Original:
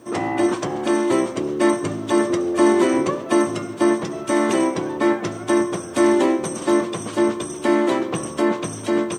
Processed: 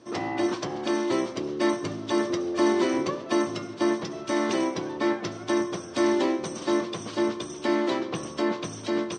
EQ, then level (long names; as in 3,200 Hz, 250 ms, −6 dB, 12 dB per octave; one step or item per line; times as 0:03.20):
low-pass with resonance 4,900 Hz, resonance Q 2.6
−7.0 dB